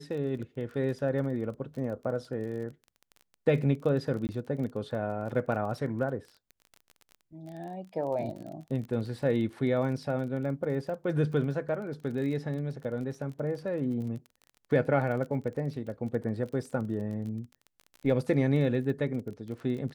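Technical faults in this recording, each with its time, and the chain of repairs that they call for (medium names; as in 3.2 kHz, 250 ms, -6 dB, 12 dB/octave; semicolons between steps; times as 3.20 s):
crackle 26 per s -38 dBFS
4.27–4.29 s: dropout 19 ms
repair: de-click; interpolate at 4.27 s, 19 ms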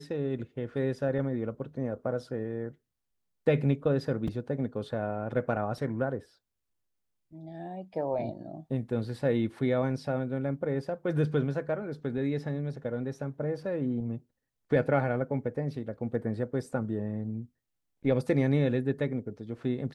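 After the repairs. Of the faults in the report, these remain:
nothing left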